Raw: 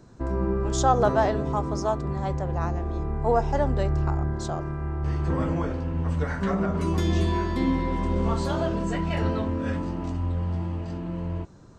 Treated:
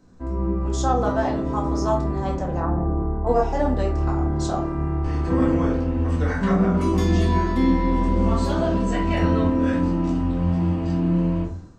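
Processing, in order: 2.60–3.27 s: low-pass 1.4 kHz 24 dB/octave; simulated room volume 240 m³, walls furnished, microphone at 2 m; level rider gain up to 11 dB; de-hum 158 Hz, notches 27; trim -7 dB

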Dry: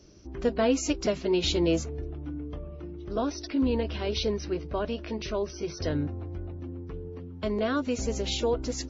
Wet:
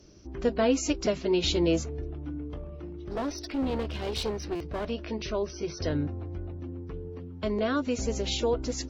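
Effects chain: 2.49–4.90 s: one-sided clip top -33 dBFS; buffer glitch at 4.55 s, samples 256, times 8; Opus 96 kbps 48 kHz

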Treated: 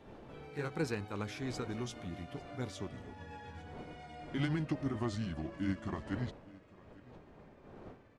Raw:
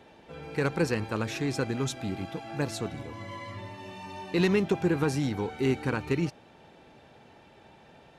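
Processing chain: pitch bend over the whole clip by -7.5 st starting unshifted; wind noise 500 Hz -47 dBFS; delay 853 ms -21.5 dB; trim -8 dB

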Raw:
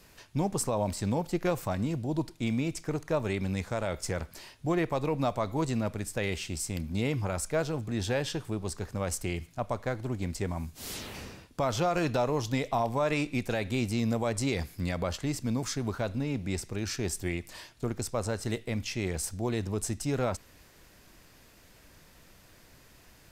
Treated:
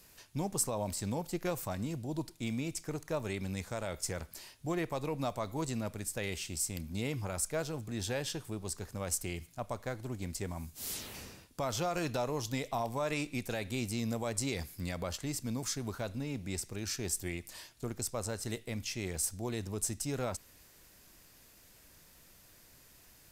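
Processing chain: treble shelf 5.7 kHz +11.5 dB; trim -6.5 dB

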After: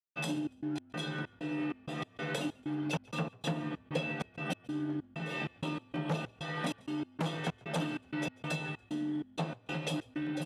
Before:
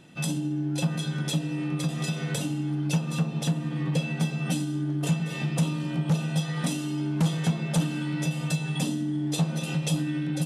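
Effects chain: three-band isolator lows -16 dB, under 270 Hz, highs -14 dB, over 3.4 kHz; gain riding 0.5 s; trance gate ".xx.x.xx" 96 bpm -60 dB; frequency-shifting echo 142 ms, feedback 34%, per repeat -45 Hz, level -24 dB

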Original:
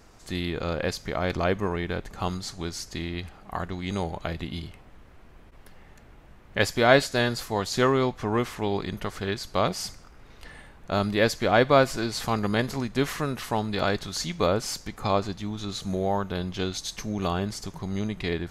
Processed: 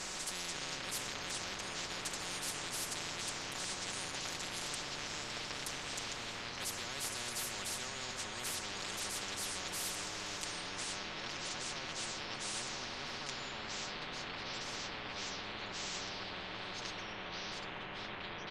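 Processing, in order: comb 5.4 ms, depth 89%; low-pass sweep 7.1 kHz -> 950 Hz, 10.37–11.42 s; reverse; compression, threshold -30 dBFS, peak gain reduction 21.5 dB; reverse; ever faster or slower copies 146 ms, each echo -4 st, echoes 3; on a send: feedback echo behind a low-pass 165 ms, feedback 83%, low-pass 1.4 kHz, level -9 dB; on the sum: spectrum-flattening compressor 10:1; trim -3.5 dB

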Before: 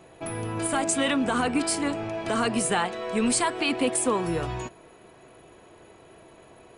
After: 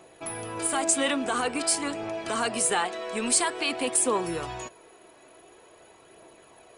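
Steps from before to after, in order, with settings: tone controls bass -10 dB, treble +5 dB; phaser 0.48 Hz, delay 3.6 ms, feedback 28%; trim -1.5 dB

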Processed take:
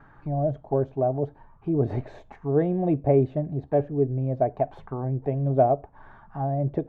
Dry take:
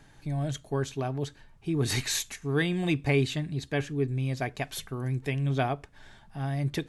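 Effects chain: vibrato 0.84 Hz 19 cents; touch-sensitive low-pass 620–1300 Hz down, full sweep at -27 dBFS; trim +2 dB

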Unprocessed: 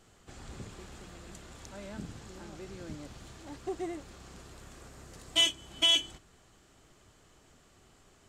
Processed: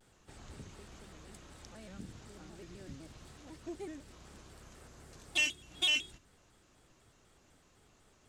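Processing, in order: dynamic bell 780 Hz, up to -6 dB, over -51 dBFS, Q 0.72; vibrato with a chosen wave square 4 Hz, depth 160 cents; trim -4.5 dB

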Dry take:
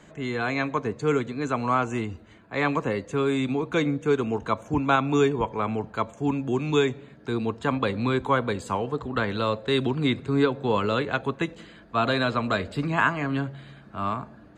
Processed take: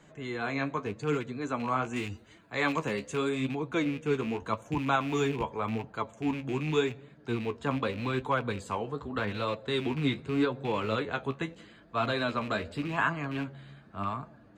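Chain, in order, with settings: rattle on loud lows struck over -28 dBFS, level -26 dBFS; 1.96–3.29 s: treble shelf 2.9 kHz +10.5 dB; flange 0.84 Hz, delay 5.7 ms, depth 9.5 ms, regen +45%; 4.45–5.69 s: treble shelf 6.6 kHz +5.5 dB; trim -2 dB

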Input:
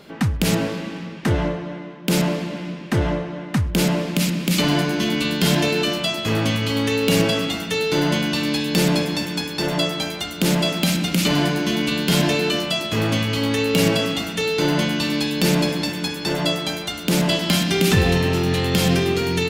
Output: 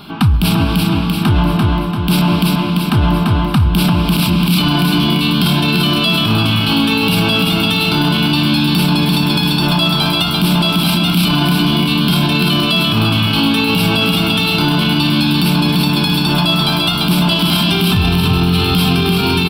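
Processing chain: static phaser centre 1.9 kHz, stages 6; on a send: feedback delay 341 ms, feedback 46%, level -6 dB; on the sum: loudness maximiser +18 dB; trim -4 dB

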